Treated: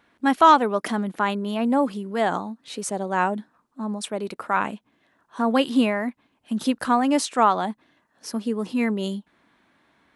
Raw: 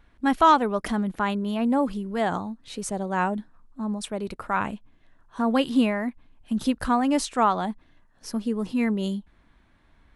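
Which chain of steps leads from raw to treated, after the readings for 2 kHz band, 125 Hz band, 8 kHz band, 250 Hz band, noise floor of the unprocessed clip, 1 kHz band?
+3.0 dB, -1.0 dB, +3.0 dB, +0.5 dB, -61 dBFS, +3.0 dB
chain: high-pass 220 Hz 12 dB/octave; trim +3 dB

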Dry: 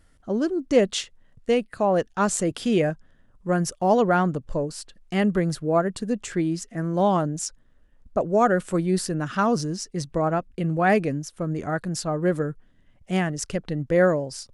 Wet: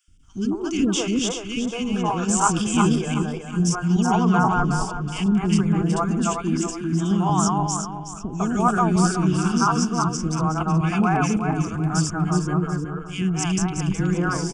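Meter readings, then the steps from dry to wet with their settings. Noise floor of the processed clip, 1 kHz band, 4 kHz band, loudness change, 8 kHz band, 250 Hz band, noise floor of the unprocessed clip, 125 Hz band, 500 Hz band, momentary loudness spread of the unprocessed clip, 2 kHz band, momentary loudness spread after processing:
-35 dBFS, +3.5 dB, +4.5 dB, +2.5 dB, +6.5 dB, +5.0 dB, -58 dBFS, +6.5 dB, -6.0 dB, 9 LU, +0.5 dB, 7 LU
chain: backward echo that repeats 185 ms, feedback 55%, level -1 dB; static phaser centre 2.8 kHz, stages 8; three bands offset in time highs, lows, mids 80/230 ms, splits 420/1900 Hz; trim +4.5 dB

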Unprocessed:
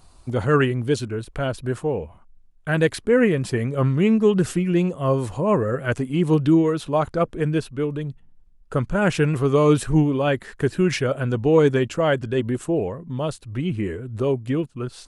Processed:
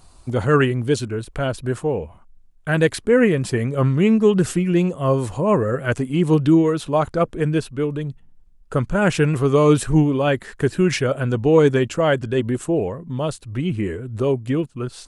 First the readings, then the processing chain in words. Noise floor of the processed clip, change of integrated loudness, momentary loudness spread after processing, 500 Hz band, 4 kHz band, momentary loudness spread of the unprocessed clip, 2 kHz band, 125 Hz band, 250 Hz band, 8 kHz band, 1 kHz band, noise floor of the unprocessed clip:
-49 dBFS, +2.0 dB, 10 LU, +2.0 dB, +2.5 dB, 10 LU, +2.0 dB, +2.0 dB, +2.0 dB, +4.0 dB, +2.0 dB, -51 dBFS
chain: peaking EQ 7.9 kHz +2.5 dB 0.77 oct; trim +2 dB

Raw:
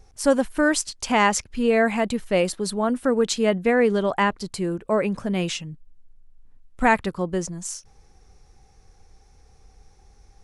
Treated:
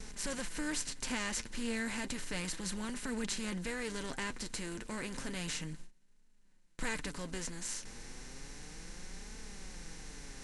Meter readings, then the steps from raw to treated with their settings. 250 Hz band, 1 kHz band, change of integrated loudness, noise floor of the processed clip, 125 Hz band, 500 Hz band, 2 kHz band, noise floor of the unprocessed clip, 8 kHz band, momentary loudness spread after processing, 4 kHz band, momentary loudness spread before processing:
-16.0 dB, -21.5 dB, -17.0 dB, -62 dBFS, -13.5 dB, -23.0 dB, -14.0 dB, -55 dBFS, -8.0 dB, 12 LU, -9.0 dB, 9 LU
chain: spectral levelling over time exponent 0.4; gate with hold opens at -20 dBFS; amplifier tone stack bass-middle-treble 6-0-2; flange 0.32 Hz, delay 4.5 ms, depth 4.6 ms, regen +35%; trim +3.5 dB

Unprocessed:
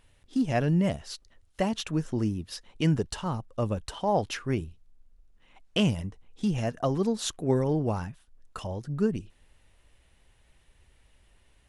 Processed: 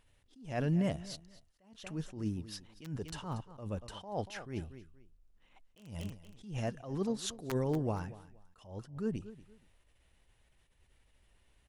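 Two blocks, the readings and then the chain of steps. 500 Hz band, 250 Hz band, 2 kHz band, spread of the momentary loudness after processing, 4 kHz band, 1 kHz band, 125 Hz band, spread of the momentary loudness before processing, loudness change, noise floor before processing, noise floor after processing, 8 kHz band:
-9.5 dB, -9.5 dB, -9.5 dB, 17 LU, -11.0 dB, -11.0 dB, -8.5 dB, 13 LU, -9.0 dB, -64 dBFS, -70 dBFS, -8.0 dB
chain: integer overflow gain 14 dB; feedback delay 236 ms, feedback 24%, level -18 dB; attacks held to a fixed rise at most 120 dB/s; trim -6 dB

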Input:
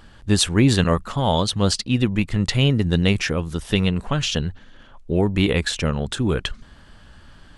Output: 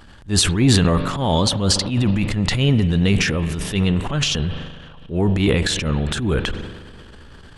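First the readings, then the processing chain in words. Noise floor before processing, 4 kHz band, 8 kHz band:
-48 dBFS, +2.5 dB, +4.0 dB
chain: spring tank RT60 3.1 s, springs 41 ms, chirp 60 ms, DRR 16 dB; transient shaper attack -10 dB, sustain +8 dB; trim +2 dB

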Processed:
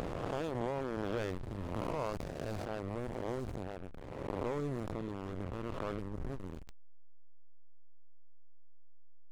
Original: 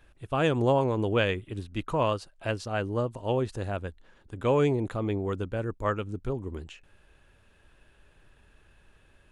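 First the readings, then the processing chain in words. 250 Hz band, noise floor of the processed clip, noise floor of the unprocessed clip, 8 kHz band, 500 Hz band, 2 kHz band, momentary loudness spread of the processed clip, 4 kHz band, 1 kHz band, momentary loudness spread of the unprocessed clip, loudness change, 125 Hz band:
-9.0 dB, -44 dBFS, -62 dBFS, no reading, -11.0 dB, -12.5 dB, 8 LU, -13.0 dB, -10.0 dB, 11 LU, -10.5 dB, -10.5 dB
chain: reverse spectral sustain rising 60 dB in 1.85 s; FFT filter 930 Hz 0 dB, 2.7 kHz -10 dB, 4.6 kHz +2 dB; compression 2:1, threshold -49 dBFS, peak gain reduction 17 dB; hysteresis with a dead band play -33.5 dBFS; decay stretcher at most 23 dB/s; trim +4 dB

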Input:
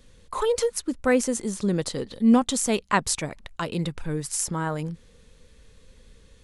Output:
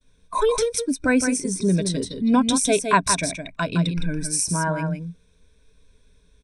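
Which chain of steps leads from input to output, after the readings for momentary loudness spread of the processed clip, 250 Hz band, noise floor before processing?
9 LU, +2.5 dB, -55 dBFS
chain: expander -51 dBFS; spectral noise reduction 13 dB; rippled EQ curve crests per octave 1.6, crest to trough 12 dB; in parallel at -3 dB: compression, threshold -29 dBFS, peak gain reduction 14.5 dB; on the sum: delay 163 ms -7 dB

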